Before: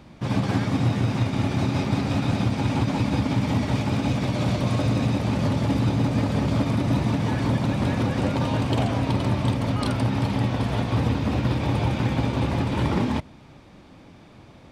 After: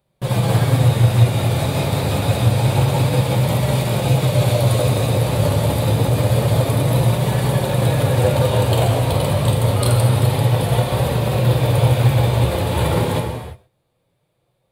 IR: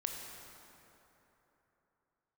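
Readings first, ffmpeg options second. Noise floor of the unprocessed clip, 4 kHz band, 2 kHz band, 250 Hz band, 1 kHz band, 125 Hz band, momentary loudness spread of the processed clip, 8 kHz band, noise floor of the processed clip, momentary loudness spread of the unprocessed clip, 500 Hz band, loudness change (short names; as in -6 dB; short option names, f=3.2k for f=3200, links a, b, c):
-48 dBFS, +8.0 dB, +4.5 dB, 0.0 dB, +6.0 dB, +8.0 dB, 4 LU, +13.5 dB, -68 dBFS, 2 LU, +10.0 dB, +6.5 dB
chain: -filter_complex "[0:a]agate=range=-26dB:threshold=-39dB:ratio=16:detection=peak,equalizer=f=125:t=o:w=1:g=8,equalizer=f=250:t=o:w=1:g=-11,equalizer=f=500:t=o:w=1:g=11,equalizer=f=4k:t=o:w=1:g=8,equalizer=f=8k:t=o:w=1:g=-4,aexciter=amount=10.7:drive=6.8:freq=8k[a];[1:a]atrim=start_sample=2205,afade=t=out:st=0.4:d=0.01,atrim=end_sample=18081[b];[a][b]afir=irnorm=-1:irlink=0,flanger=delay=5.1:depth=6.9:regen=-44:speed=0.27:shape=sinusoidal,volume=6dB"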